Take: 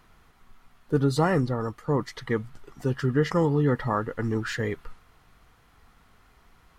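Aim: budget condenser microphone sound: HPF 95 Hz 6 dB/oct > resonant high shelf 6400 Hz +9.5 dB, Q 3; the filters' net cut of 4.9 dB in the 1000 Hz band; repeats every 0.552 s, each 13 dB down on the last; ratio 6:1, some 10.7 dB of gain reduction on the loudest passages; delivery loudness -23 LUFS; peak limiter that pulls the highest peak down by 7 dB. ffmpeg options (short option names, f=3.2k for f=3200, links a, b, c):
-af "equalizer=f=1k:t=o:g=-6,acompressor=threshold=-30dB:ratio=6,alimiter=level_in=2dB:limit=-24dB:level=0:latency=1,volume=-2dB,highpass=f=95:p=1,highshelf=f=6.4k:t=q:w=3:g=9.5,aecho=1:1:552|1104|1656:0.224|0.0493|0.0108,volume=15dB"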